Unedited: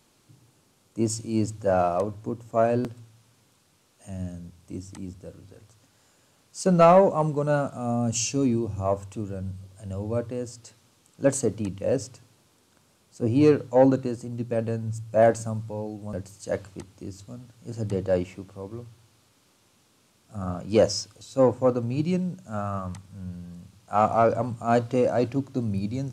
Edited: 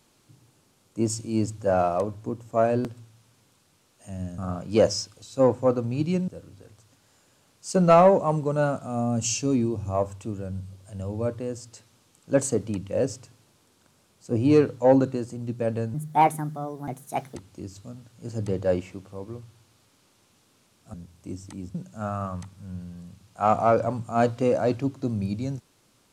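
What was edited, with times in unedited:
4.38–5.19 swap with 20.37–22.27
14.85–16.79 speed 137%

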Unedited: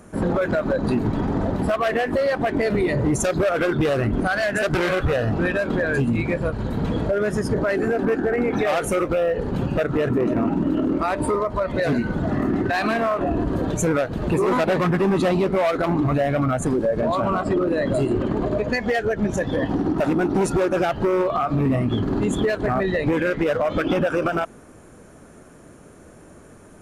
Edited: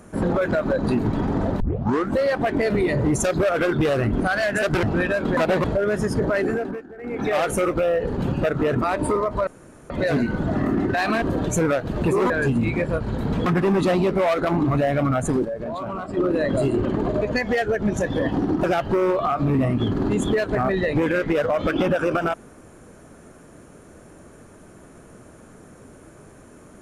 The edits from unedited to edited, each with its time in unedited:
1.6 tape start 0.59 s
4.83–5.28 cut
5.82–6.98 swap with 14.56–14.83
7.79–8.7 dip -19 dB, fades 0.38 s
10.15–11 cut
11.66 insert room tone 0.43 s
12.98–13.48 cut
16.82–17.54 gain -8 dB
20.01–20.75 cut

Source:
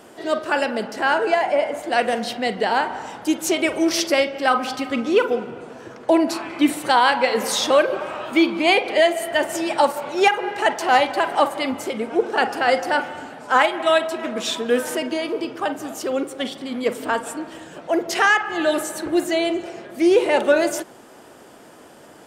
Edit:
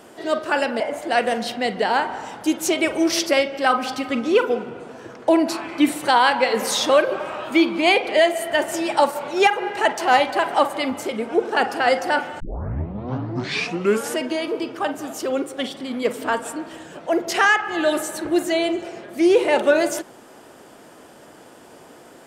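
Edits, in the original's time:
0.8–1.61 cut
13.21 tape start 1.78 s

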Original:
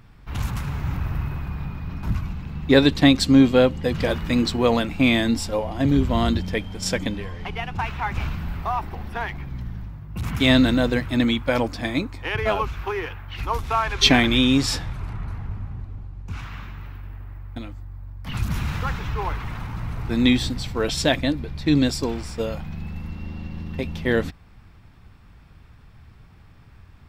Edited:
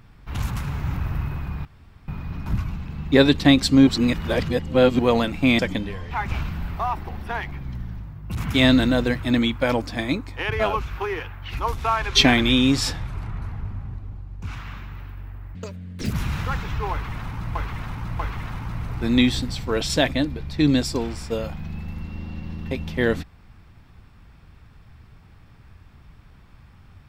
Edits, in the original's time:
1.65 insert room tone 0.43 s
3.44–4.56 reverse
5.16–6.9 cut
7.42–7.97 cut
17.41–18.46 speed 190%
19.27–19.91 loop, 3 plays

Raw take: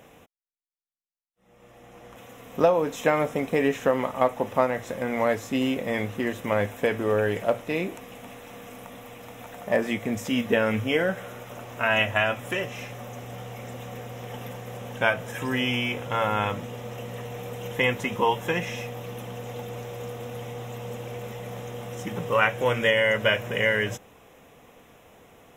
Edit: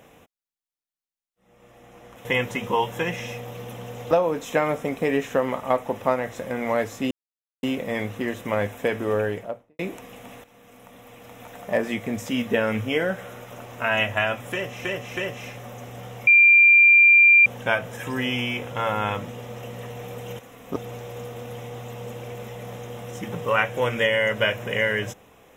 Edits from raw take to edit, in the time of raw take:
2.25–2.62 swap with 17.74–19.6
5.62 insert silence 0.52 s
7.12–7.78 studio fade out
8.43–9.55 fade in, from -13 dB
12.52–12.84 loop, 3 plays
13.62–14.81 bleep 2380 Hz -10 dBFS

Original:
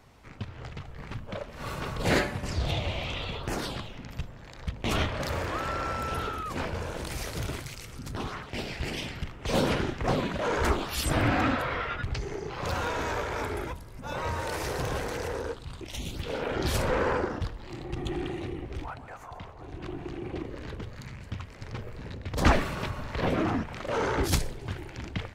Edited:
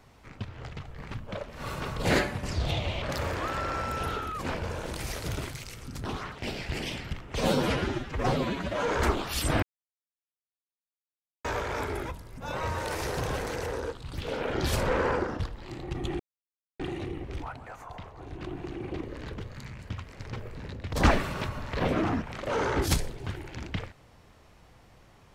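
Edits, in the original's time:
3.02–5.13 cut
9.52–10.51 stretch 1.5×
11.24–13.06 mute
15.75–16.15 cut
18.21 insert silence 0.60 s

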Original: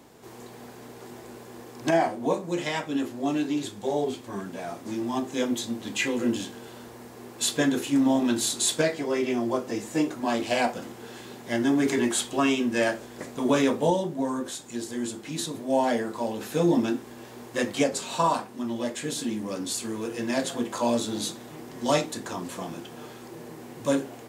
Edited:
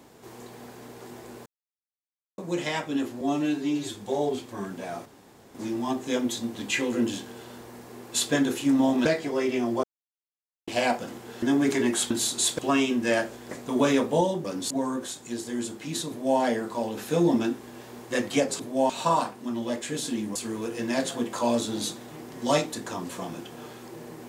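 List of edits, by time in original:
1.46–2.38 mute
3.21–3.7 stretch 1.5×
4.81 insert room tone 0.49 s
8.32–8.8 move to 12.28
9.58–10.42 mute
11.17–11.6 cut
15.53–15.83 copy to 18.03
19.49–19.75 move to 14.14

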